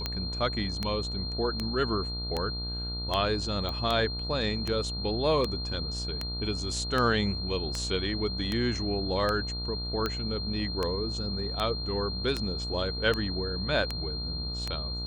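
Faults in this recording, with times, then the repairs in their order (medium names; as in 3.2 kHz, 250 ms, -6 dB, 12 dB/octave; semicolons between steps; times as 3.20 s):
buzz 60 Hz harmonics 25 -36 dBFS
tick 78 rpm -15 dBFS
whine 4.2 kHz -35 dBFS
3.69 s: pop -21 dBFS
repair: de-click; de-hum 60 Hz, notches 25; band-stop 4.2 kHz, Q 30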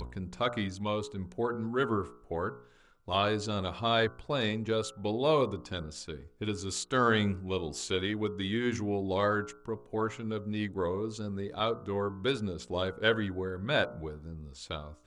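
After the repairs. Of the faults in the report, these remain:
nothing left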